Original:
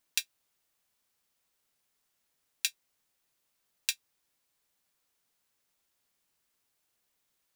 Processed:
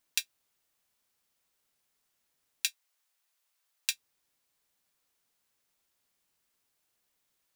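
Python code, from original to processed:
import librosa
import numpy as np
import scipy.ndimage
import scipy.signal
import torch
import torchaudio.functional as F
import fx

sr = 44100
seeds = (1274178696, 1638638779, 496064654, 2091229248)

y = fx.highpass(x, sr, hz=720.0, slope=12, at=(2.67, 3.9))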